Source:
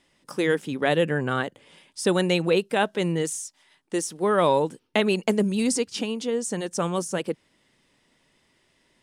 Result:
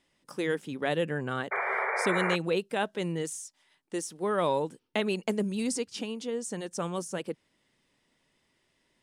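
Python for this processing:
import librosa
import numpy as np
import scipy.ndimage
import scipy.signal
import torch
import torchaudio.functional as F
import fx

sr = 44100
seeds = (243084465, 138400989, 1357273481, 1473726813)

y = fx.spec_paint(x, sr, seeds[0], shape='noise', start_s=1.51, length_s=0.85, low_hz=370.0, high_hz=2400.0, level_db=-23.0)
y = y * 10.0 ** (-7.0 / 20.0)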